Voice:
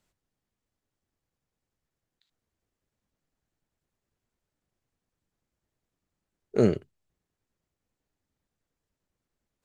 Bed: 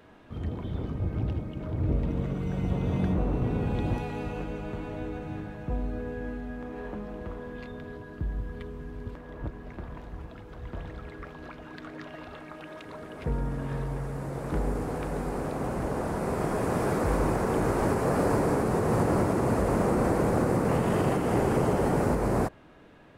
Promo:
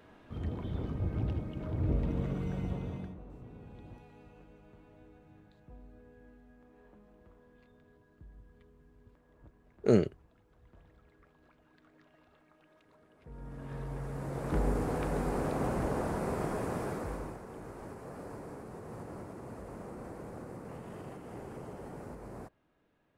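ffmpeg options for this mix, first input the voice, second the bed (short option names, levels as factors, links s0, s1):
-filter_complex "[0:a]adelay=3300,volume=0.75[s0];[1:a]volume=7.5,afade=t=out:st=2.38:d=0.78:silence=0.11885,afade=t=in:st=13.28:d=1.4:silence=0.0891251,afade=t=out:st=15.62:d=1.79:silence=0.112202[s1];[s0][s1]amix=inputs=2:normalize=0"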